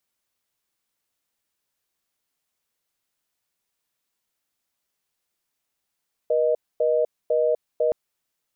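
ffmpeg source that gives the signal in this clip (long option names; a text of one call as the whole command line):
ffmpeg -f lavfi -i "aevalsrc='0.0944*(sin(2*PI*480*t)+sin(2*PI*620*t))*clip(min(mod(t,0.5),0.25-mod(t,0.5))/0.005,0,1)':duration=1.62:sample_rate=44100" out.wav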